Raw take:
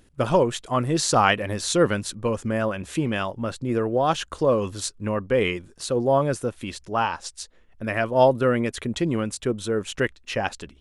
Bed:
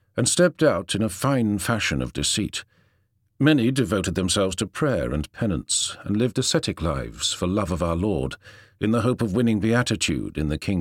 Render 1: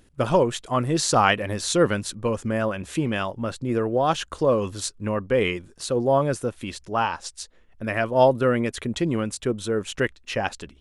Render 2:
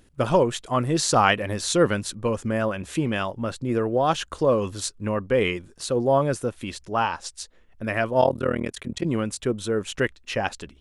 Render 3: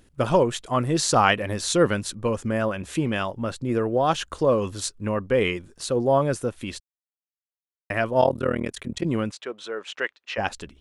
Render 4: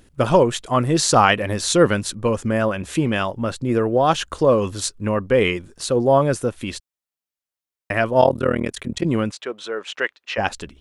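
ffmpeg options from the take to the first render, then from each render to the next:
ffmpeg -i in.wav -af anull out.wav
ffmpeg -i in.wav -filter_complex "[0:a]asplit=3[link_01][link_02][link_03];[link_01]afade=type=out:start_time=8.2:duration=0.02[link_04];[link_02]tremolo=f=39:d=0.947,afade=type=in:start_time=8.2:duration=0.02,afade=type=out:start_time=9.04:duration=0.02[link_05];[link_03]afade=type=in:start_time=9.04:duration=0.02[link_06];[link_04][link_05][link_06]amix=inputs=3:normalize=0" out.wav
ffmpeg -i in.wav -filter_complex "[0:a]asplit=3[link_01][link_02][link_03];[link_01]afade=type=out:start_time=9.3:duration=0.02[link_04];[link_02]highpass=630,lowpass=4300,afade=type=in:start_time=9.3:duration=0.02,afade=type=out:start_time=10.37:duration=0.02[link_05];[link_03]afade=type=in:start_time=10.37:duration=0.02[link_06];[link_04][link_05][link_06]amix=inputs=3:normalize=0,asplit=3[link_07][link_08][link_09];[link_07]atrim=end=6.8,asetpts=PTS-STARTPTS,afade=type=out:start_time=6.796:duration=0.004:curve=hsin[link_10];[link_08]atrim=start=6.8:end=7.9,asetpts=PTS-STARTPTS,volume=0[link_11];[link_09]atrim=start=7.9,asetpts=PTS-STARTPTS,afade=type=in:duration=0.004:curve=hsin[link_12];[link_10][link_11][link_12]concat=n=3:v=0:a=1" out.wav
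ffmpeg -i in.wav -af "volume=4.5dB,alimiter=limit=-1dB:level=0:latency=1" out.wav

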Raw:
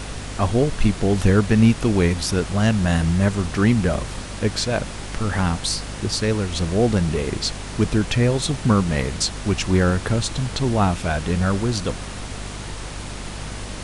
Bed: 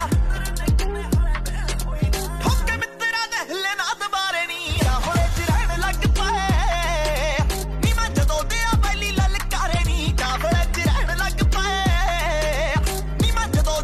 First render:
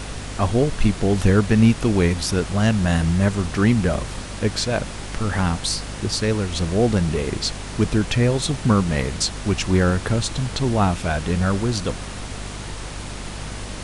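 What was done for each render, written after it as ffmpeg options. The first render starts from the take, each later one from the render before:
ffmpeg -i in.wav -af anull out.wav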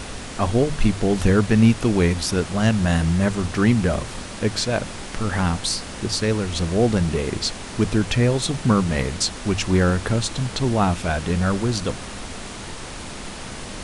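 ffmpeg -i in.wav -af "bandreject=frequency=50:width_type=h:width=6,bandreject=frequency=100:width_type=h:width=6,bandreject=frequency=150:width_type=h:width=6" out.wav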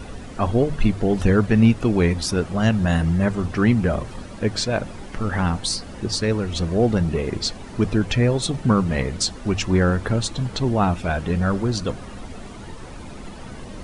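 ffmpeg -i in.wav -af "afftdn=noise_reduction=12:noise_floor=-34" out.wav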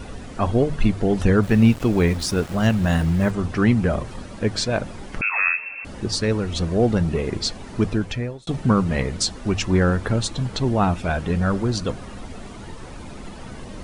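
ffmpeg -i in.wav -filter_complex "[0:a]asplit=3[link_01][link_02][link_03];[link_01]afade=type=out:start_time=1.42:duration=0.02[link_04];[link_02]aeval=exprs='val(0)*gte(abs(val(0)),0.0211)':channel_layout=same,afade=type=in:start_time=1.42:duration=0.02,afade=type=out:start_time=3.3:duration=0.02[link_05];[link_03]afade=type=in:start_time=3.3:duration=0.02[link_06];[link_04][link_05][link_06]amix=inputs=3:normalize=0,asettb=1/sr,asplit=3[link_07][link_08][link_09];[link_07]atrim=end=5.214[link_10];[link_08]atrim=start=5.21:end=5.85,asetpts=PTS-STARTPTS,afade=type=in:duration=0.004:curve=qsin,afade=type=out:start_time=0.636:duration=0.004:curve=qsin,lowpass=frequency=2300:width_type=q:width=0.5098,lowpass=frequency=2300:width_type=q:width=0.6013,lowpass=frequency=2300:width_type=q:width=0.9,lowpass=frequency=2300:width_type=q:width=2.563,afreqshift=-2700[link_11];[link_09]atrim=start=5.846[link_12];[link_10][link_11]acrossfade=duration=0.004:curve1=hsin:curve2=qsin[link_13];[link_13][link_12]acrossfade=duration=0.004:curve1=qsin:curve2=hsin,asplit=2[link_14][link_15];[link_14]atrim=end=8.47,asetpts=PTS-STARTPTS,afade=type=out:start_time=7.81:duration=0.66[link_16];[link_15]atrim=start=8.47,asetpts=PTS-STARTPTS,afade=type=in:duration=0.004:curve=hsin[link_17];[link_16][link_17]concat=n=2:v=0:a=1" out.wav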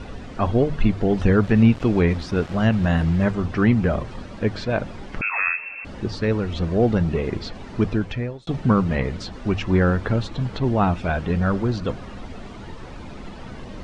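ffmpeg -i in.wav -filter_complex "[0:a]lowpass=4900,acrossover=split=3100[link_01][link_02];[link_02]acompressor=threshold=-41dB:ratio=4:attack=1:release=60[link_03];[link_01][link_03]amix=inputs=2:normalize=0" out.wav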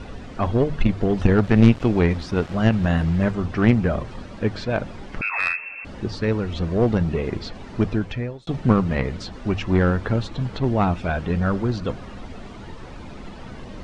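ffmpeg -i in.wav -filter_complex "[0:a]aeval=exprs='0.631*(cos(1*acos(clip(val(0)/0.631,-1,1)))-cos(1*PI/2))+0.0562*(cos(3*acos(clip(val(0)/0.631,-1,1)))-cos(3*PI/2))+0.141*(cos(4*acos(clip(val(0)/0.631,-1,1)))-cos(4*PI/2))+0.0631*(cos(6*acos(clip(val(0)/0.631,-1,1)))-cos(6*PI/2))':channel_layout=same,asplit=2[link_01][link_02];[link_02]asoftclip=type=tanh:threshold=-17dB,volume=-12dB[link_03];[link_01][link_03]amix=inputs=2:normalize=0" out.wav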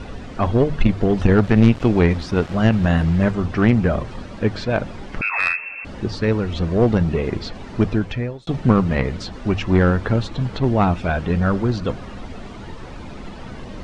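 ffmpeg -i in.wav -af "volume=3dB,alimiter=limit=-2dB:level=0:latency=1" out.wav

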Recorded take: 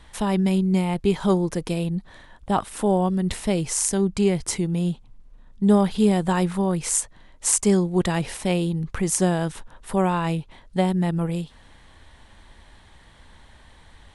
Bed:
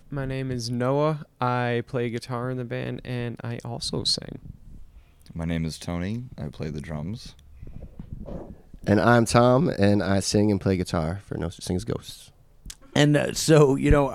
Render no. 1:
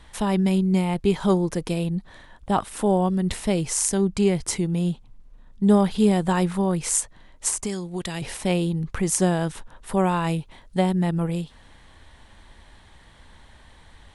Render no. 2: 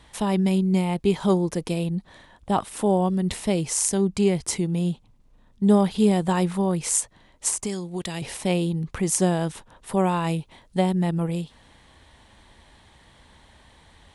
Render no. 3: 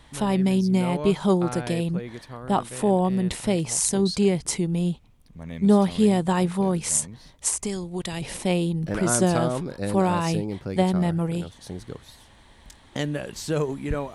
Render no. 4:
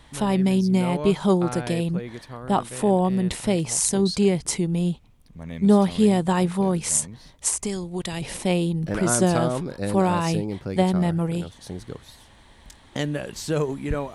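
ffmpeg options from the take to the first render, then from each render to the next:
ffmpeg -i in.wav -filter_complex "[0:a]asettb=1/sr,asplit=3[link_01][link_02][link_03];[link_01]atrim=end=7.484[link_04];[link_02]atrim=start=7.48:end=8.22,asetpts=PTS-STARTPTS,afade=type=in:duration=0.004:curve=qsin,afade=type=out:start_time=0.736:duration=0.004:curve=qsin,acrossover=split=720|2100[link_05][link_06][link_07];[link_05]acompressor=threshold=-29dB:ratio=4[link_08];[link_06]acompressor=threshold=-44dB:ratio=4[link_09];[link_07]acompressor=threshold=-25dB:ratio=4[link_10];[link_08][link_09][link_10]amix=inputs=3:normalize=0[link_11];[link_03]atrim=start=8.216[link_12];[link_04][link_11]acrossfade=duration=0.004:curve1=hsin:curve2=qsin[link_13];[link_13][link_12]acrossfade=duration=0.004:curve1=qsin:curve2=hsin,asettb=1/sr,asplit=3[link_14][link_15][link_16];[link_14]atrim=end=10.074[link_17];[link_15]atrim=start=10.07:end=10.79,asetpts=PTS-STARTPTS,afade=type=in:duration=0.004:curve=qsin,afade=type=out:start_time=0.716:duration=0.004:curve=qsin,highshelf=frequency=8500:gain=7[link_18];[link_16]atrim=start=10.786[link_19];[link_17][link_18]acrossfade=duration=0.004:curve1=hsin:curve2=qsin[link_20];[link_20][link_19]acrossfade=duration=0.004:curve1=qsin:curve2=hsin" out.wav
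ffmpeg -i in.wav -af "highpass=frequency=71:poles=1,equalizer=frequency=1500:width_type=o:width=0.7:gain=-3.5" out.wav
ffmpeg -i in.wav -i bed.wav -filter_complex "[1:a]volume=-9dB[link_01];[0:a][link_01]amix=inputs=2:normalize=0" out.wav
ffmpeg -i in.wav -af "volume=1dB,alimiter=limit=-3dB:level=0:latency=1" out.wav

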